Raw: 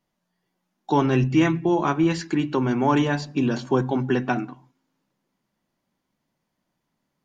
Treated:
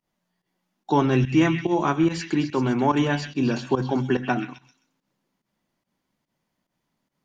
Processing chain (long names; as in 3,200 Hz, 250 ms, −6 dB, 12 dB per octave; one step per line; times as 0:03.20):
echo through a band-pass that steps 130 ms, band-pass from 2,500 Hz, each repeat 0.7 octaves, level −5 dB
fake sidechain pumping 144 BPM, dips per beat 1, −15 dB, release 105 ms